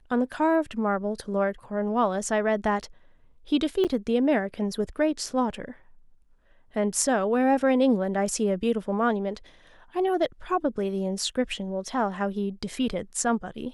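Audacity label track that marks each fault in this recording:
3.840000	3.850000	dropout 7.5 ms

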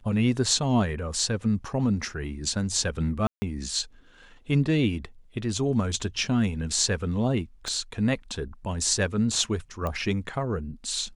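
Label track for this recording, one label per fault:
3.270000	3.420000	dropout 150 ms
7.680000	7.680000	pop -21 dBFS
9.870000	9.870000	pop -18 dBFS

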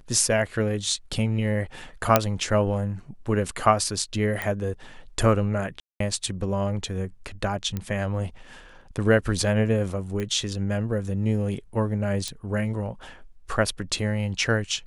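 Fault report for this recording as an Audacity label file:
2.160000	2.160000	pop -1 dBFS
4.420000	4.420000	pop -14 dBFS
5.800000	6.000000	dropout 203 ms
7.770000	7.770000	pop -16 dBFS
10.200000	10.200000	pop -18 dBFS
12.280000	12.280000	pop -17 dBFS

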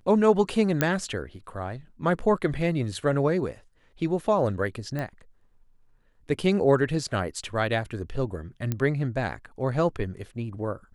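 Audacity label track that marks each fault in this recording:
0.810000	0.810000	pop -8 dBFS
4.990000	4.990000	pop -19 dBFS
8.720000	8.720000	pop -14 dBFS

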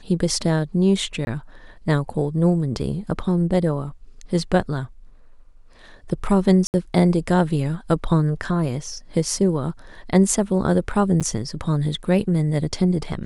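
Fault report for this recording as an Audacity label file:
1.250000	1.270000	dropout 21 ms
6.670000	6.740000	dropout 69 ms
11.200000	11.210000	dropout 7.3 ms

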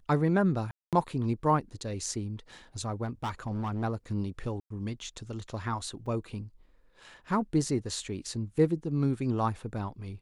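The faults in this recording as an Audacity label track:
0.710000	0.930000	dropout 217 ms
3.040000	3.840000	clipped -28.5 dBFS
4.600000	4.700000	dropout 104 ms
6.060000	6.060000	dropout 3.8 ms

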